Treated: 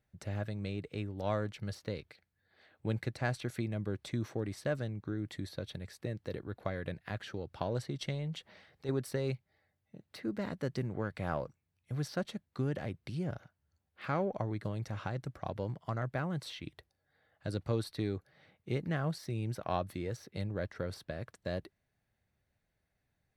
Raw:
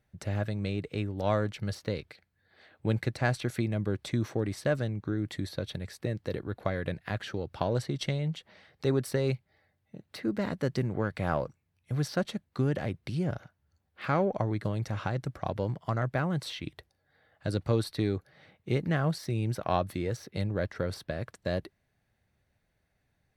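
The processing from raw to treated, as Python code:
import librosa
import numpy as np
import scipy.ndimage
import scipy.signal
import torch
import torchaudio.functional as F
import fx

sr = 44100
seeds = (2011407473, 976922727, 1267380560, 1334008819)

y = fx.transient(x, sr, attack_db=-8, sustain_db=5, at=(8.14, 8.89))
y = F.gain(torch.from_numpy(y), -6.0).numpy()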